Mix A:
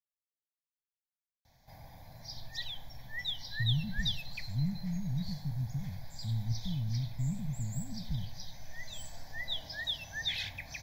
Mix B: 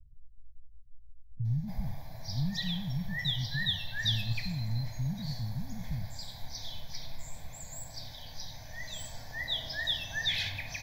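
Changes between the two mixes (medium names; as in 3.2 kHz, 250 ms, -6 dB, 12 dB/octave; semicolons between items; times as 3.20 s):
speech: entry -2.20 s; background: send on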